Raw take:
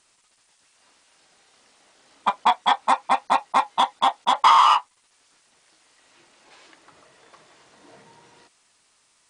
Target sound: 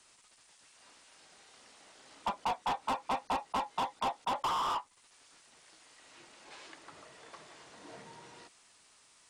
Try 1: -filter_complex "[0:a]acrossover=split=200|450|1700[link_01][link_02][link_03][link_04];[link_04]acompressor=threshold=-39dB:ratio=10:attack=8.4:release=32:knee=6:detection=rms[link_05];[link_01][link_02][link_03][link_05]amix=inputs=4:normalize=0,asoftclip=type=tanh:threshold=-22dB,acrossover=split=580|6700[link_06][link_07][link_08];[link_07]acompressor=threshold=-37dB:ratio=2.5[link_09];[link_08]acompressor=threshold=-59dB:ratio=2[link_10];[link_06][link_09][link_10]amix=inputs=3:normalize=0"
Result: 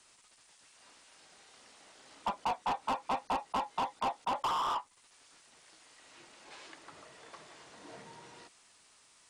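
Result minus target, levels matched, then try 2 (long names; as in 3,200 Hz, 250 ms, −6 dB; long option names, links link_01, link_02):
downward compressor: peak gain reduction +8.5 dB
-filter_complex "[0:a]acrossover=split=200|450|1700[link_01][link_02][link_03][link_04];[link_04]acompressor=threshold=-29.5dB:ratio=10:attack=8.4:release=32:knee=6:detection=rms[link_05];[link_01][link_02][link_03][link_05]amix=inputs=4:normalize=0,asoftclip=type=tanh:threshold=-22dB,acrossover=split=580|6700[link_06][link_07][link_08];[link_07]acompressor=threshold=-37dB:ratio=2.5[link_09];[link_08]acompressor=threshold=-59dB:ratio=2[link_10];[link_06][link_09][link_10]amix=inputs=3:normalize=0"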